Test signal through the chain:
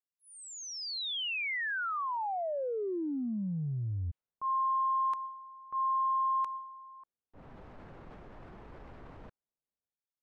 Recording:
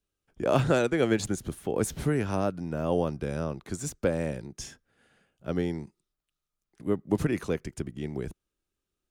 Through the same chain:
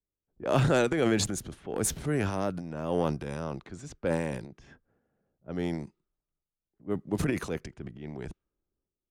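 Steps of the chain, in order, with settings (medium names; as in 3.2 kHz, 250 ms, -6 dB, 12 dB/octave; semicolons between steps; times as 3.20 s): transient shaper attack -4 dB, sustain +9 dB; level-controlled noise filter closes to 660 Hz, open at -26 dBFS; upward expansion 1.5:1, over -37 dBFS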